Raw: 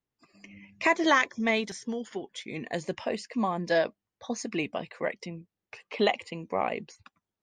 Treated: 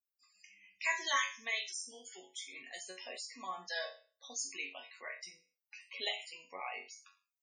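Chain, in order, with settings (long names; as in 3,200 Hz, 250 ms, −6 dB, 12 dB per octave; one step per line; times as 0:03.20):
first difference
resonators tuned to a chord F#2 sus4, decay 0.39 s
spectral peaks only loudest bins 64
level +17.5 dB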